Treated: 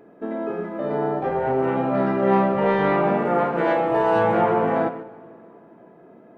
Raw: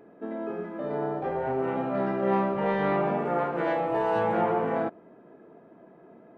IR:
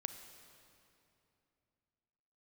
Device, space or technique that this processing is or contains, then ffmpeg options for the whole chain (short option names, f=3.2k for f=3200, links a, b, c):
keyed gated reverb: -filter_complex "[0:a]asplit=3[a][b][c];[1:a]atrim=start_sample=2205[d];[b][d]afir=irnorm=-1:irlink=0[e];[c]apad=whole_len=280974[f];[e][f]sidechaingate=range=-6dB:threshold=-45dB:ratio=16:detection=peak,volume=5.5dB[g];[a][g]amix=inputs=2:normalize=0,volume=-1.5dB"